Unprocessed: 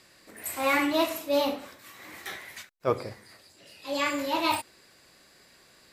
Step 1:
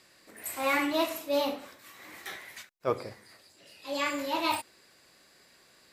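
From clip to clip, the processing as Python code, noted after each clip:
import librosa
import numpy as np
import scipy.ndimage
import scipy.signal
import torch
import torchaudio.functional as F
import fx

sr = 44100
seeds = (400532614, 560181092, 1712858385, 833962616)

y = fx.low_shelf(x, sr, hz=130.0, db=-5.5)
y = F.gain(torch.from_numpy(y), -2.5).numpy()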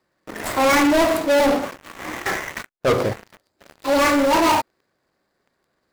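y = scipy.ndimage.median_filter(x, 15, mode='constant')
y = fx.leveller(y, sr, passes=5)
y = F.gain(torch.from_numpy(y), 4.0).numpy()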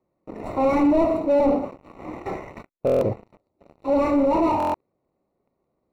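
y = scipy.signal.lfilter(np.full(27, 1.0 / 27), 1.0, x)
y = fx.buffer_glitch(y, sr, at_s=(2.85, 4.58), block=1024, repeats=6)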